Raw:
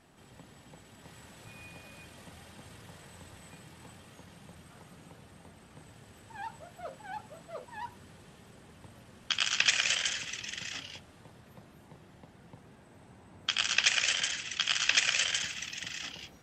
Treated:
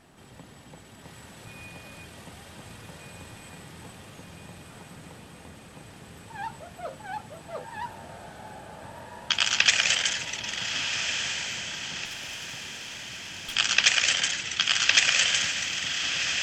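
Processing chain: diffused feedback echo 1.399 s, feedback 65%, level -6 dB; 12.05–13.56 tube stage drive 37 dB, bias 0.5; gain +5.5 dB

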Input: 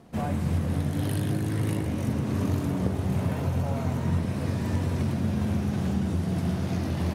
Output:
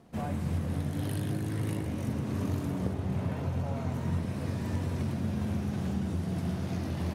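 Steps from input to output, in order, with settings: 2.93–3.93 high shelf 5700 Hz -> 11000 Hz -9 dB; gain -5 dB

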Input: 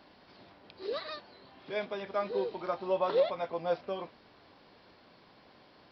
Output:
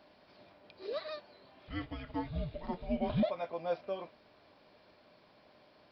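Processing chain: 1.67–3.23 frequency shift -330 Hz; small resonant body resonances 610/2400 Hz, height 9 dB; gain -5 dB

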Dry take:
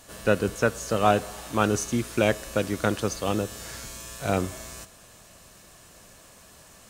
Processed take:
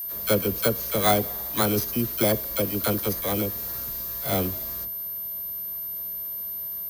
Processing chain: FFT order left unsorted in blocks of 16 samples; dispersion lows, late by 41 ms, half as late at 680 Hz; whine 13000 Hz -30 dBFS

